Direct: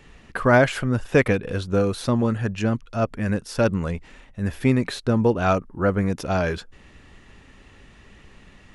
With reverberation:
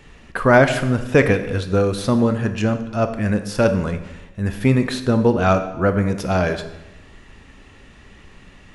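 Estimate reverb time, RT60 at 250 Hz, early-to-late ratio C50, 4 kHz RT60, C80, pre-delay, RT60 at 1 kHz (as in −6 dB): 1.0 s, 1.1 s, 10.5 dB, 0.85 s, 12.5 dB, 17 ms, 0.95 s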